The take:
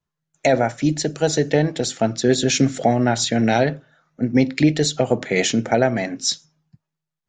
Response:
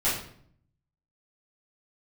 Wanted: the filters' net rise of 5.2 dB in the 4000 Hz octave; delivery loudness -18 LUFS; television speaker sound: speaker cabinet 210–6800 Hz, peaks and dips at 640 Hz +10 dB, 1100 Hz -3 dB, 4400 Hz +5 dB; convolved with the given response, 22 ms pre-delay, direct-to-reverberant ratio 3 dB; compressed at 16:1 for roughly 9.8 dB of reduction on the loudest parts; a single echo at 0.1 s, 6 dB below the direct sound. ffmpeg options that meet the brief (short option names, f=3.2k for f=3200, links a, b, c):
-filter_complex "[0:a]equalizer=f=4k:t=o:g=3.5,acompressor=threshold=-20dB:ratio=16,aecho=1:1:100:0.501,asplit=2[a][b];[1:a]atrim=start_sample=2205,adelay=22[c];[b][c]afir=irnorm=-1:irlink=0,volume=-14.5dB[d];[a][d]amix=inputs=2:normalize=0,highpass=f=210:w=0.5412,highpass=f=210:w=1.3066,equalizer=f=640:t=q:w=4:g=10,equalizer=f=1.1k:t=q:w=4:g=-3,equalizer=f=4.4k:t=q:w=4:g=5,lowpass=f=6.8k:w=0.5412,lowpass=f=6.8k:w=1.3066,volume=3dB"